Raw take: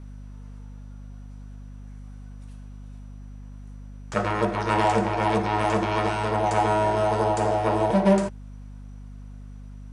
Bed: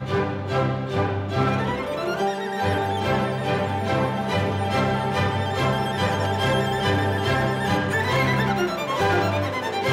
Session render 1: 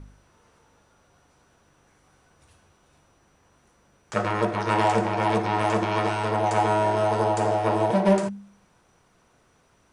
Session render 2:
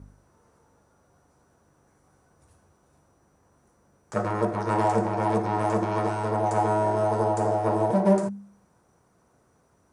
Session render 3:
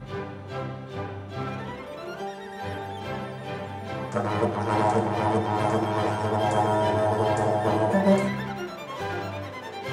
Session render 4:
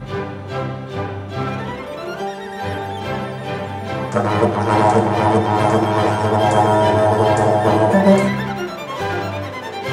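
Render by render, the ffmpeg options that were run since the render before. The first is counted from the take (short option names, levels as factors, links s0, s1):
-af "bandreject=f=50:t=h:w=4,bandreject=f=100:t=h:w=4,bandreject=f=150:t=h:w=4,bandreject=f=200:t=h:w=4,bandreject=f=250:t=h:w=4"
-af "highpass=52,equalizer=f=3000:t=o:w=1.6:g=-13.5"
-filter_complex "[1:a]volume=0.299[s0];[0:a][s0]amix=inputs=2:normalize=0"
-af "volume=2.82,alimiter=limit=0.794:level=0:latency=1"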